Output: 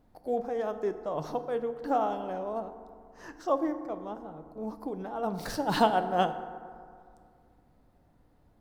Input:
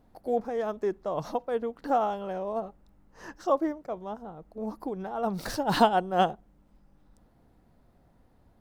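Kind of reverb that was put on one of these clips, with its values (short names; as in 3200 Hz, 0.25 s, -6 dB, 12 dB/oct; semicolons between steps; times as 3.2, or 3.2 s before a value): FDN reverb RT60 2.2 s, low-frequency decay 1.05×, high-frequency decay 0.4×, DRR 9 dB; gain -2.5 dB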